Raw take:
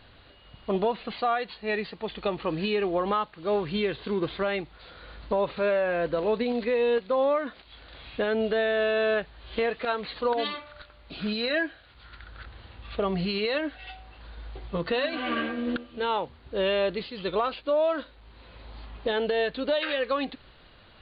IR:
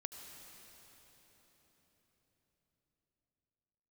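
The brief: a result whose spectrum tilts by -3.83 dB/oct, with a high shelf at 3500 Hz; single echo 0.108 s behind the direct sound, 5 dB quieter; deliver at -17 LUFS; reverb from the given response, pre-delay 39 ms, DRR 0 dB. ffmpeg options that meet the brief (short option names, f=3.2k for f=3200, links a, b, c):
-filter_complex "[0:a]highshelf=f=3.5k:g=-9,aecho=1:1:108:0.562,asplit=2[a][b];[1:a]atrim=start_sample=2205,adelay=39[c];[b][c]afir=irnorm=-1:irlink=0,volume=3dB[d];[a][d]amix=inputs=2:normalize=0,volume=8.5dB"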